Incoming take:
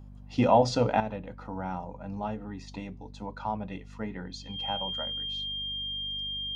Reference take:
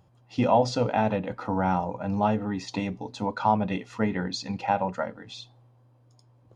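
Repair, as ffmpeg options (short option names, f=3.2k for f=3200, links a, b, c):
-af "bandreject=f=49.3:t=h:w=4,bandreject=f=98.6:t=h:w=4,bandreject=f=147.9:t=h:w=4,bandreject=f=197.2:t=h:w=4,bandreject=f=246.5:t=h:w=4,bandreject=f=3.2k:w=30,asetnsamples=n=441:p=0,asendcmd='1 volume volume 10dB',volume=0dB"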